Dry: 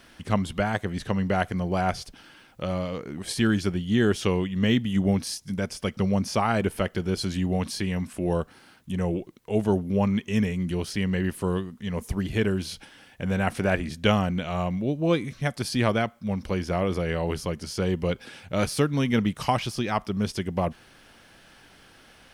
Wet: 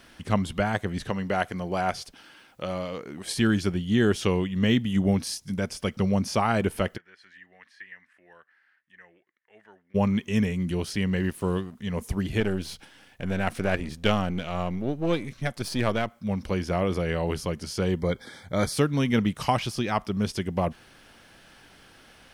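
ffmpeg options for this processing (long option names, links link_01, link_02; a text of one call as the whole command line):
ffmpeg -i in.wav -filter_complex "[0:a]asettb=1/sr,asplit=3[link_01][link_02][link_03];[link_01]atrim=end=1.104[link_04];[link_02]atrim=start=1.1:end=3.33,asetpts=PTS-STARTPTS,afade=type=in:duration=0.004:curve=qsin,afade=type=out:start_time=2.226:duration=0.004:curve=qsin,lowshelf=frequency=180:gain=-10[link_05];[link_03]atrim=start=3.326[link_06];[link_04][link_05]acrossfade=duration=0.004:curve1=hsin:curve2=qsin[link_07];[link_07][link_06]acrossfade=duration=0.004:curve1=qsin:curve2=hsin,asplit=3[link_08][link_09][link_10];[link_08]afade=type=out:start_time=6.96:duration=0.02[link_11];[link_09]bandpass=frequency=1800:width_type=q:width=9,afade=type=in:start_time=6.96:duration=0.02,afade=type=out:start_time=9.94:duration=0.02[link_12];[link_10]afade=type=in:start_time=9.94:duration=0.02[link_13];[link_11][link_12][link_13]amix=inputs=3:normalize=0,asettb=1/sr,asplit=3[link_14][link_15][link_16];[link_14]atrim=end=11.164[link_17];[link_15]atrim=start=11.16:end=11.75,asetpts=PTS-STARTPTS,afade=type=in:duration=0.004:curve=qsin,afade=type=out:start_time=0.586:duration=0.004:curve=qsin,aeval=exprs='sgn(val(0))*max(abs(val(0))-0.00299,0)':channel_layout=same[link_18];[link_16]atrim=start=11.746[link_19];[link_17][link_18]acrossfade=duration=0.004:curve1=hsin:curve2=qsin[link_20];[link_20][link_19]acrossfade=duration=0.004:curve1=qsin:curve2=hsin,asettb=1/sr,asplit=3[link_21][link_22][link_23];[link_21]atrim=end=12.404[link_24];[link_22]atrim=start=12.4:end=16.11,asetpts=PTS-STARTPTS,afade=type=in:duration=0.004:curve=qsin,afade=type=out:start_time=3.706:duration=0.004:curve=qsin,aeval=exprs='if(lt(val(0),0),0.447*val(0),val(0))':channel_layout=same[link_25];[link_23]atrim=start=16.106[link_26];[link_24][link_25]acrossfade=duration=0.004:curve1=hsin:curve2=qsin[link_27];[link_27][link_26]acrossfade=duration=0.004:curve1=qsin:curve2=hsin,asettb=1/sr,asplit=3[link_28][link_29][link_30];[link_28]atrim=end=17.984[link_31];[link_29]atrim=start=17.98:end=18.73,asetpts=PTS-STARTPTS,afade=type=in:duration=0.004:curve=qsin,afade=type=out:start_time=0.746:duration=0.004:curve=qsin,asuperstop=centerf=2700:order=12:qfactor=3.5[link_32];[link_30]atrim=start=18.726[link_33];[link_31][link_32]acrossfade=duration=0.004:curve1=hsin:curve2=qsin[link_34];[link_34][link_33]acrossfade=duration=0.004:curve1=qsin:curve2=hsin" out.wav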